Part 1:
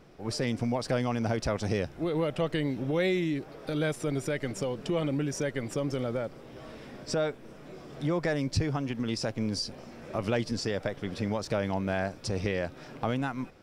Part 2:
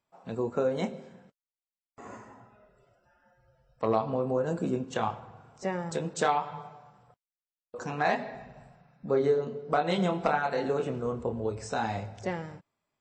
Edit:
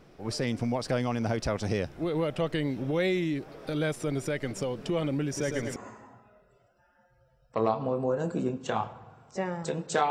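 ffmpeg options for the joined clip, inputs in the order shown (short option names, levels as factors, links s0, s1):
-filter_complex "[0:a]asettb=1/sr,asplit=3[s0][s1][s2];[s0]atrim=end=5.264[s3];[s1]atrim=start=5.26:end=5.76,asetpts=PTS-STARTPTS,afade=t=in:d=0.004:c=qsin,afade=t=out:st=0.496:d=0.004:c=qsin,aecho=1:1:108|216|324|432|540|648|756:0.531|0.292|0.161|0.0883|0.0486|0.0267|0.0147,atrim=end_sample=22050[s4];[s2]atrim=start=5.756[s5];[s3][s4]acrossfade=d=0.004:c1=hsin:c2=qsin[s6];[s6][s5]acrossfade=d=0.004:c1=qsin:c2=hsin,apad=whole_dur=10.1,atrim=end=10.1,atrim=end=5.762[s7];[1:a]atrim=start=2.028:end=6.37[s8];[s7][s8]acrossfade=d=0.004:c1=hsin:c2=hsin"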